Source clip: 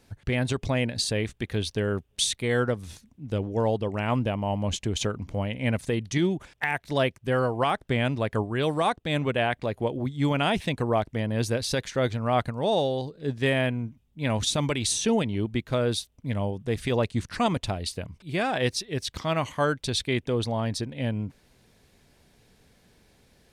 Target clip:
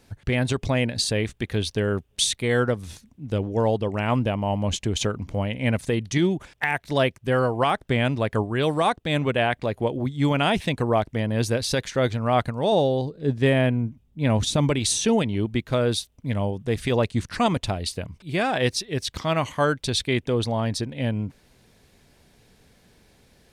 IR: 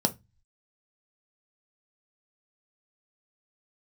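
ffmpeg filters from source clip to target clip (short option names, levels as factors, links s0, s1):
-filter_complex "[0:a]asettb=1/sr,asplit=3[s0][s1][s2];[s0]atrim=end=12.724[s3];[s1]atrim=start=12.72:end=14.79,asetpts=PTS-STARTPTS,afade=t=in:d=0.004:c=qsin,afade=t=out:st=2.066:d=0.004:c=qsin,tiltshelf=f=840:g=3.5[s4];[s2]atrim=start=14.786[s5];[s3][s4]acrossfade=d=0.004:c1=hsin:c2=qsin[s6];[s6][s5]acrossfade=d=0.004:c1=qsin:c2=hsin,volume=1.41"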